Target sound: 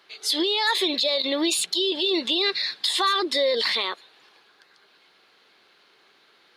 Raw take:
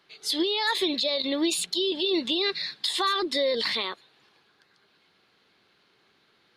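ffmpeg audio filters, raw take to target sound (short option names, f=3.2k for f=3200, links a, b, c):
-filter_complex "[0:a]bass=f=250:g=-14,treble=f=4k:g=0,asplit=2[a][b];[b]alimiter=level_in=1.5dB:limit=-24dB:level=0:latency=1:release=63,volume=-1.5dB,volume=-1.5dB[c];[a][c]amix=inputs=2:normalize=0,acontrast=46,volume=-4.5dB"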